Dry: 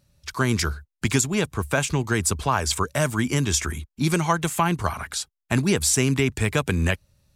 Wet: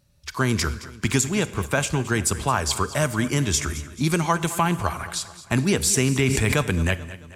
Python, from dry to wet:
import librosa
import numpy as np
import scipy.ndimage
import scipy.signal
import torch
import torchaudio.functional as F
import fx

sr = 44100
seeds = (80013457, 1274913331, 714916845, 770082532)

p1 = x + fx.echo_feedback(x, sr, ms=219, feedback_pct=49, wet_db=-16, dry=0)
p2 = fx.rev_schroeder(p1, sr, rt60_s=0.85, comb_ms=31, drr_db=16.0)
y = fx.sustainer(p2, sr, db_per_s=21.0, at=(6.16, 6.61), fade=0.02)